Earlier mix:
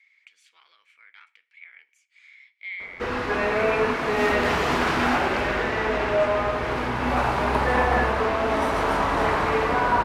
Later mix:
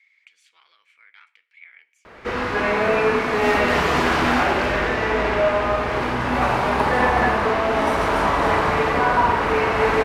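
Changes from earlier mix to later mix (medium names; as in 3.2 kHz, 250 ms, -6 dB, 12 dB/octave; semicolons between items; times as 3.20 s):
background: entry -0.75 s; reverb: on, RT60 0.55 s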